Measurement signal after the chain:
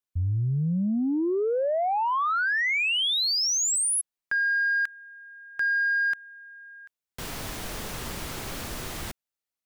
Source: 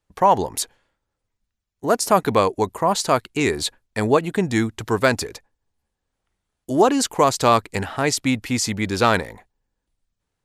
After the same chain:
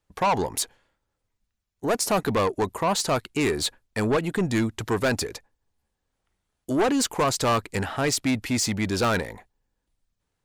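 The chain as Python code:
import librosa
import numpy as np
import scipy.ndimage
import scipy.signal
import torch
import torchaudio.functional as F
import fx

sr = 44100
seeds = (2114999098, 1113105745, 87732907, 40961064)

y = 10.0 ** (-17.5 / 20.0) * np.tanh(x / 10.0 ** (-17.5 / 20.0))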